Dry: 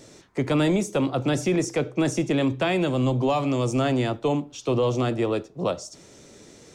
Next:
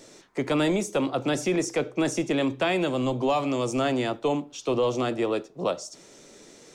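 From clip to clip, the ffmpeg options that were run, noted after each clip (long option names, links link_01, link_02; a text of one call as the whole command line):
ffmpeg -i in.wav -af "equalizer=frequency=82:width=0.72:gain=-13" out.wav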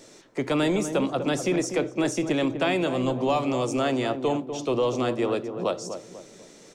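ffmpeg -i in.wav -filter_complex "[0:a]asplit=2[link_01][link_02];[link_02]adelay=246,lowpass=frequency=910:poles=1,volume=-7.5dB,asplit=2[link_03][link_04];[link_04]adelay=246,lowpass=frequency=910:poles=1,volume=0.45,asplit=2[link_05][link_06];[link_06]adelay=246,lowpass=frequency=910:poles=1,volume=0.45,asplit=2[link_07][link_08];[link_08]adelay=246,lowpass=frequency=910:poles=1,volume=0.45,asplit=2[link_09][link_10];[link_10]adelay=246,lowpass=frequency=910:poles=1,volume=0.45[link_11];[link_01][link_03][link_05][link_07][link_09][link_11]amix=inputs=6:normalize=0" out.wav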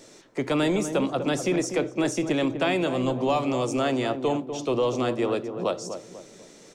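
ffmpeg -i in.wav -af anull out.wav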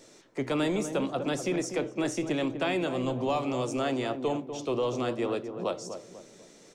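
ffmpeg -i in.wav -af "flanger=delay=1.8:depth=9:regen=88:speed=0.74:shape=triangular" out.wav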